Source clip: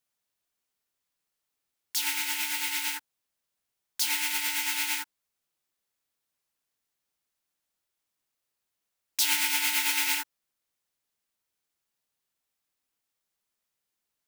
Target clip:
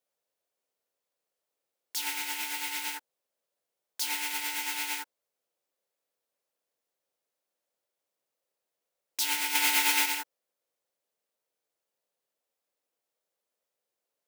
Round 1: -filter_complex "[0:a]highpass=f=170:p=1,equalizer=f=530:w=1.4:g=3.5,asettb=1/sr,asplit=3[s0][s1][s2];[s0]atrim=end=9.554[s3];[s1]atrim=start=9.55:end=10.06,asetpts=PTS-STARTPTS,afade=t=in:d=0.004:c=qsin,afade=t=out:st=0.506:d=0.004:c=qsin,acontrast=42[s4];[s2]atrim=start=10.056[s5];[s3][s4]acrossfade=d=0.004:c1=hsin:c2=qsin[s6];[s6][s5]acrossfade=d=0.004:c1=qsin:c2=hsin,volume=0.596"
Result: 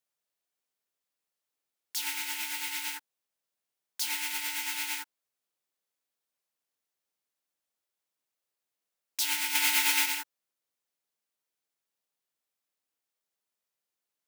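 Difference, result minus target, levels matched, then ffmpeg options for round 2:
500 Hz band -8.0 dB
-filter_complex "[0:a]highpass=f=170:p=1,equalizer=f=530:w=1.4:g=15,asettb=1/sr,asplit=3[s0][s1][s2];[s0]atrim=end=9.554[s3];[s1]atrim=start=9.55:end=10.06,asetpts=PTS-STARTPTS,afade=t=in:d=0.004:c=qsin,afade=t=out:st=0.506:d=0.004:c=qsin,acontrast=42[s4];[s2]atrim=start=10.056[s5];[s3][s4]acrossfade=d=0.004:c1=hsin:c2=qsin[s6];[s6][s5]acrossfade=d=0.004:c1=qsin:c2=hsin,volume=0.596"

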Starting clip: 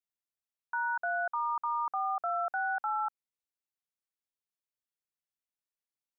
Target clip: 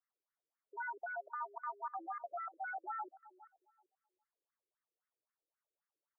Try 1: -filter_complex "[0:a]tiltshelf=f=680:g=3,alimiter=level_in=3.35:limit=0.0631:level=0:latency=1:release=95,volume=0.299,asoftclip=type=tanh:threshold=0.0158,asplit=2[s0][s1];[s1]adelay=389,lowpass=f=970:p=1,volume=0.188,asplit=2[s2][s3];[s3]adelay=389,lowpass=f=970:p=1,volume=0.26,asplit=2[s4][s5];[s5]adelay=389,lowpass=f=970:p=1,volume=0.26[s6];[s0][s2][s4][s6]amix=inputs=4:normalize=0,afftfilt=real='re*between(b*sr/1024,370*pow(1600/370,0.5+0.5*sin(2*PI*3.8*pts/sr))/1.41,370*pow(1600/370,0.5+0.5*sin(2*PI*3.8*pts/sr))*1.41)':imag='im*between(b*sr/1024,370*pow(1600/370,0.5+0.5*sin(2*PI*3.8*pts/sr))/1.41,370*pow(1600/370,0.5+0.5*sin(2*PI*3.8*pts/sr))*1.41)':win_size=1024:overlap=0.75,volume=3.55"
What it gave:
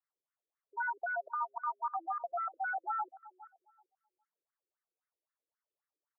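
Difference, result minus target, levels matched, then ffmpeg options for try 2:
saturation: distortion -11 dB
-filter_complex "[0:a]tiltshelf=f=680:g=3,alimiter=level_in=3.35:limit=0.0631:level=0:latency=1:release=95,volume=0.299,asoftclip=type=tanh:threshold=0.00473,asplit=2[s0][s1];[s1]adelay=389,lowpass=f=970:p=1,volume=0.188,asplit=2[s2][s3];[s3]adelay=389,lowpass=f=970:p=1,volume=0.26,asplit=2[s4][s5];[s5]adelay=389,lowpass=f=970:p=1,volume=0.26[s6];[s0][s2][s4][s6]amix=inputs=4:normalize=0,afftfilt=real='re*between(b*sr/1024,370*pow(1600/370,0.5+0.5*sin(2*PI*3.8*pts/sr))/1.41,370*pow(1600/370,0.5+0.5*sin(2*PI*3.8*pts/sr))*1.41)':imag='im*between(b*sr/1024,370*pow(1600/370,0.5+0.5*sin(2*PI*3.8*pts/sr))/1.41,370*pow(1600/370,0.5+0.5*sin(2*PI*3.8*pts/sr))*1.41)':win_size=1024:overlap=0.75,volume=3.55"

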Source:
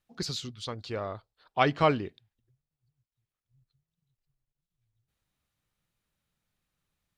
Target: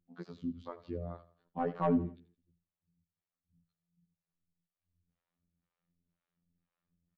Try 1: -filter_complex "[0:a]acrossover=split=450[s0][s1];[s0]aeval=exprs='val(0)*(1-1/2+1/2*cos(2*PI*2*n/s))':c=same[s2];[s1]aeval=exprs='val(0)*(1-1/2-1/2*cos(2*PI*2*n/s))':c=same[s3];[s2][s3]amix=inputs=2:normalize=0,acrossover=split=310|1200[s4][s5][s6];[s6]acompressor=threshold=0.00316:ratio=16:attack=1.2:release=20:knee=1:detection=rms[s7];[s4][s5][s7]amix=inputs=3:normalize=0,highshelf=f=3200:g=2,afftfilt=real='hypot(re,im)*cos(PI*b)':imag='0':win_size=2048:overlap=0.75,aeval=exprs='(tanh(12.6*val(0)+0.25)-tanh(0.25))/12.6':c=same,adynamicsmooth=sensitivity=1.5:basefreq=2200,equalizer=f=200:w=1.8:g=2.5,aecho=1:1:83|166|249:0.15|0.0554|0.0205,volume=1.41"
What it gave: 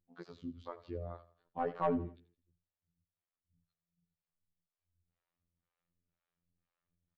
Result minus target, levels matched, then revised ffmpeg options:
250 Hz band -3.0 dB
-filter_complex "[0:a]acrossover=split=450[s0][s1];[s0]aeval=exprs='val(0)*(1-1/2+1/2*cos(2*PI*2*n/s))':c=same[s2];[s1]aeval=exprs='val(0)*(1-1/2-1/2*cos(2*PI*2*n/s))':c=same[s3];[s2][s3]amix=inputs=2:normalize=0,acrossover=split=310|1200[s4][s5][s6];[s6]acompressor=threshold=0.00316:ratio=16:attack=1.2:release=20:knee=1:detection=rms[s7];[s4][s5][s7]amix=inputs=3:normalize=0,highshelf=f=3200:g=2,afftfilt=real='hypot(re,im)*cos(PI*b)':imag='0':win_size=2048:overlap=0.75,aeval=exprs='(tanh(12.6*val(0)+0.25)-tanh(0.25))/12.6':c=same,adynamicsmooth=sensitivity=1.5:basefreq=2200,equalizer=f=200:w=1.8:g=14,aecho=1:1:83|166|249:0.15|0.0554|0.0205,volume=1.41"

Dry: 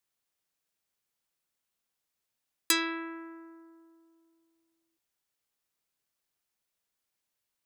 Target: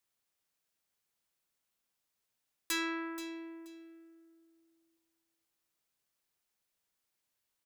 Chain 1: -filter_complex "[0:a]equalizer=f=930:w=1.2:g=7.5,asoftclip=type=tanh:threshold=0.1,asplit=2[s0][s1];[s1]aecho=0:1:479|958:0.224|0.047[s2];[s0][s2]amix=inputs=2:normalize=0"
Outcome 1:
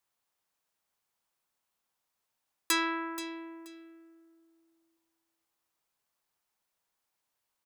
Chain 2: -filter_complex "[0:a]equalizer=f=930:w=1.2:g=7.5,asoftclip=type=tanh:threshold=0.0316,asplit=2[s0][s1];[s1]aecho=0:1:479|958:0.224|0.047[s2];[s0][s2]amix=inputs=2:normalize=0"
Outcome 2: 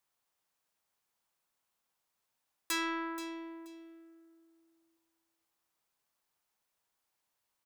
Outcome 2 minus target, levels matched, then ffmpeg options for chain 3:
1 kHz band +4.0 dB
-filter_complex "[0:a]asoftclip=type=tanh:threshold=0.0316,asplit=2[s0][s1];[s1]aecho=0:1:479|958:0.224|0.047[s2];[s0][s2]amix=inputs=2:normalize=0"

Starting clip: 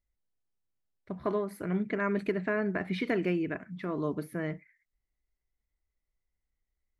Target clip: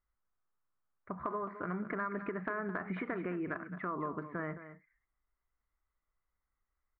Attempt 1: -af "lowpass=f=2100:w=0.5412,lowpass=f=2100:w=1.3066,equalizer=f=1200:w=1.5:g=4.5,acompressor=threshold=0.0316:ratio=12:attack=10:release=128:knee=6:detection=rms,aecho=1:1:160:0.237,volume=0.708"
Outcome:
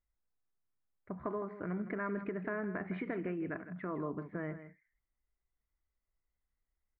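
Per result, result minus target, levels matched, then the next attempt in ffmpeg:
echo 55 ms early; 1 kHz band -4.5 dB
-af "lowpass=f=2100:w=0.5412,lowpass=f=2100:w=1.3066,equalizer=f=1200:w=1.5:g=4.5,acompressor=threshold=0.0316:ratio=12:attack=10:release=128:knee=6:detection=rms,aecho=1:1:215:0.237,volume=0.708"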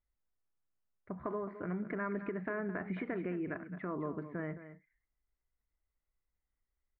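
1 kHz band -5.0 dB
-af "lowpass=f=2100:w=0.5412,lowpass=f=2100:w=1.3066,equalizer=f=1200:w=1.5:g=16.5,acompressor=threshold=0.0316:ratio=12:attack=10:release=128:knee=6:detection=rms,aecho=1:1:215:0.237,volume=0.708"

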